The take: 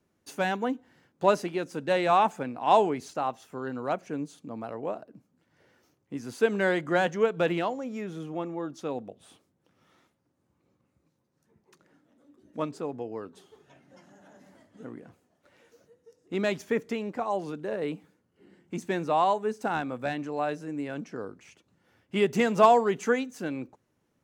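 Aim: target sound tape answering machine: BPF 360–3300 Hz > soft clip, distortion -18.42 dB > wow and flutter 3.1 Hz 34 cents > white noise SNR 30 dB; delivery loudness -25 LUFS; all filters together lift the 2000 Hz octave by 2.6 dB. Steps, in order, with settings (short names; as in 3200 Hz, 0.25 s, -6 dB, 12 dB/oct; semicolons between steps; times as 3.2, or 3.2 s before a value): BPF 360–3300 Hz; bell 2000 Hz +4 dB; soft clip -12.5 dBFS; wow and flutter 3.1 Hz 34 cents; white noise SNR 30 dB; gain +5 dB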